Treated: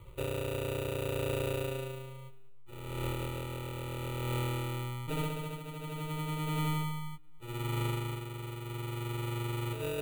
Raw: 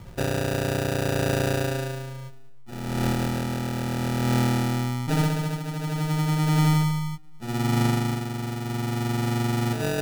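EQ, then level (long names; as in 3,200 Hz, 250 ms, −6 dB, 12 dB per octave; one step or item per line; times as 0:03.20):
phaser with its sweep stopped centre 1,100 Hz, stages 8
−6.0 dB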